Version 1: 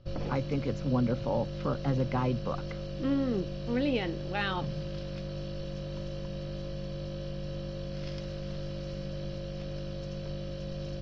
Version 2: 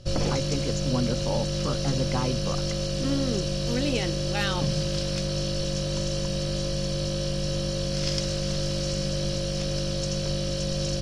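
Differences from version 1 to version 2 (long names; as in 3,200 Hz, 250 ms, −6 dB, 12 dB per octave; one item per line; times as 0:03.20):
background +8.5 dB
master: remove high-frequency loss of the air 270 metres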